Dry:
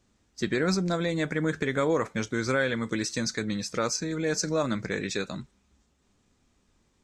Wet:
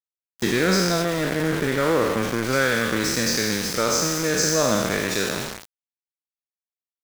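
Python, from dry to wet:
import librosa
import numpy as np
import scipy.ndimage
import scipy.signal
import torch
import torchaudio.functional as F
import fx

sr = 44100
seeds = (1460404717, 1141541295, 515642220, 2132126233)

y = fx.spec_trails(x, sr, decay_s=1.95)
y = fx.high_shelf(y, sr, hz=2000.0, db=-9.0, at=(1.02, 2.53))
y = np.where(np.abs(y) >= 10.0 ** (-28.0 / 20.0), y, 0.0)
y = F.gain(torch.from_numpy(y), 3.0).numpy()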